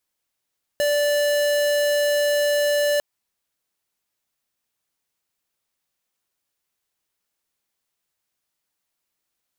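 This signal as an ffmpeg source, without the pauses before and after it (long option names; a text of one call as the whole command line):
ffmpeg -f lavfi -i "aevalsrc='0.1*(2*lt(mod(584*t,1),0.5)-1)':duration=2.2:sample_rate=44100" out.wav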